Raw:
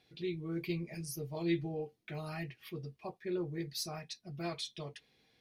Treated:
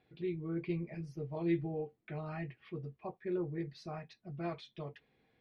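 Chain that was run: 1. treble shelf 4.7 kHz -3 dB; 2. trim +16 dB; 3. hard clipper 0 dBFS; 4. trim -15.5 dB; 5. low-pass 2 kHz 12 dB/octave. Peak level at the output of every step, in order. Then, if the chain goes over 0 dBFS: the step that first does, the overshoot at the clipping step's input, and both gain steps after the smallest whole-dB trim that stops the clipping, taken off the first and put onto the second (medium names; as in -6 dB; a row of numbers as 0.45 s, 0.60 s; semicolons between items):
-22.0 dBFS, -6.0 dBFS, -6.0 dBFS, -21.5 dBFS, -22.0 dBFS; nothing clips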